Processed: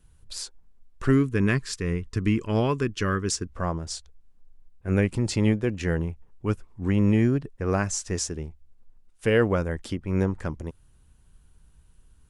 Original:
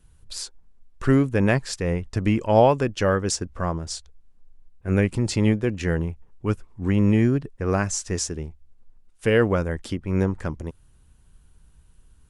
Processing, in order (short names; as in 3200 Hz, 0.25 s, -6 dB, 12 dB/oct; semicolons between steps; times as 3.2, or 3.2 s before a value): spectral gain 1.11–3.5, 470–970 Hz -12 dB; gain -2 dB